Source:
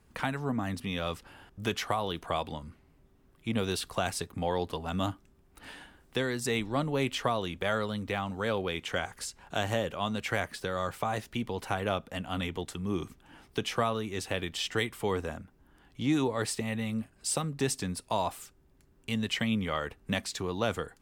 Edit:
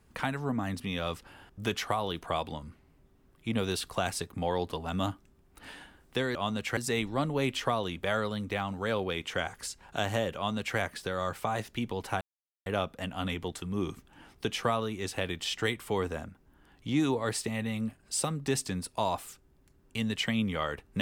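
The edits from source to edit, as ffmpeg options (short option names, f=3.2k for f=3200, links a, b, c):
-filter_complex "[0:a]asplit=4[a][b][c][d];[a]atrim=end=6.352[e];[b]atrim=start=9.938:end=10.362[f];[c]atrim=start=6.348:end=11.79,asetpts=PTS-STARTPTS,afade=t=out:st=5.438:d=0.004:c=hsin,apad=pad_dur=0.45[g];[d]atrim=start=11.79,asetpts=PTS-STARTPTS,afade=t=in:d=0.004:c=hsin[h];[e][f]acrossfade=d=0.004:c1=hsin:c2=hsin[i];[g][h]concat=n=2:v=0:a=1[j];[i][j]acrossfade=d=0.004:c1=hsin:c2=hsin"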